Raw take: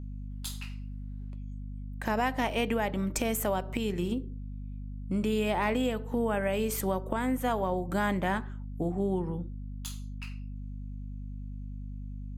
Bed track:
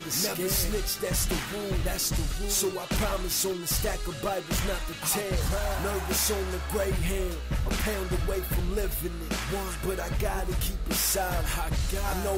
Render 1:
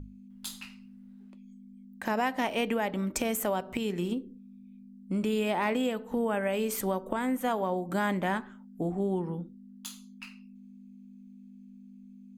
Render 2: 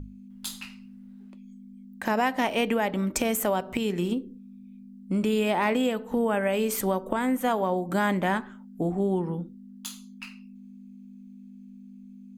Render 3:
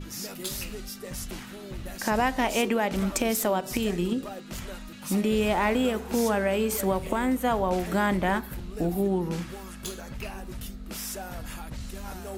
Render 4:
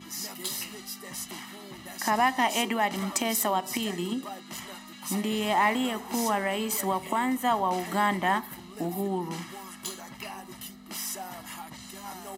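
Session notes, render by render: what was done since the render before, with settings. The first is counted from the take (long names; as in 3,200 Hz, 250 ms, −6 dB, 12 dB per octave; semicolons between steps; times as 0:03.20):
mains-hum notches 50/100/150 Hz
level +4 dB
mix in bed track −9.5 dB
high-pass filter 290 Hz 12 dB per octave; comb filter 1 ms, depth 68%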